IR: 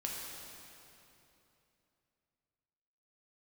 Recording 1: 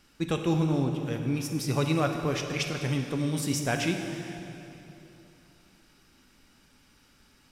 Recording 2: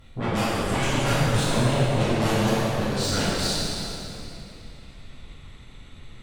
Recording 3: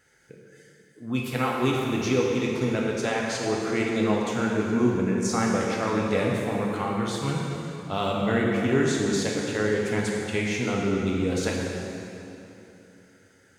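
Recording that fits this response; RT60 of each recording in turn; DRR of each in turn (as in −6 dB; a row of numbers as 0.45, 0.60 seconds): 3; 3.0, 3.0, 3.0 seconds; 3.5, −12.0, −3.0 decibels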